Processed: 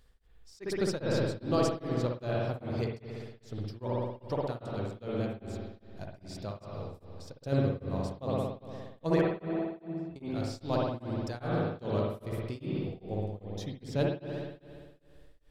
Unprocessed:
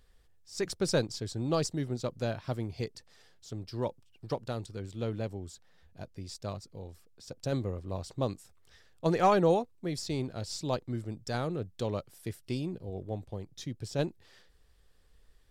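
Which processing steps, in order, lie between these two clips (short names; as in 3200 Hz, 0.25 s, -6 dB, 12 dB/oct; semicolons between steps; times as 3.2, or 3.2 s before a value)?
9.21–10.16 octave resonator E, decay 0.2 s; spring tank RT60 1.9 s, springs 58 ms, chirp 55 ms, DRR -3.5 dB; dynamic EQ 7400 Hz, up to -5 dB, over -58 dBFS, Q 1.1; beating tremolo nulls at 2.5 Hz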